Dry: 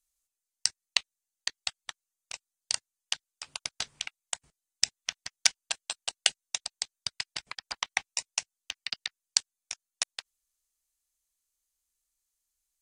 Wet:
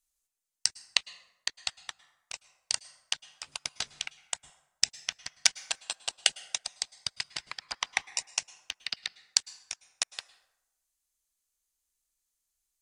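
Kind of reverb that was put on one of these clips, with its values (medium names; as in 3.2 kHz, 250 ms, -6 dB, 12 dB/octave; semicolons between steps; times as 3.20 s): plate-style reverb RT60 0.94 s, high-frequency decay 0.55×, pre-delay 95 ms, DRR 18 dB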